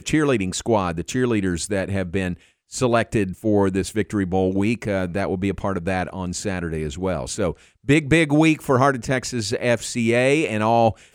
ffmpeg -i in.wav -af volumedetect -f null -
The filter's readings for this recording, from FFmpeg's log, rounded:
mean_volume: -21.2 dB
max_volume: -3.1 dB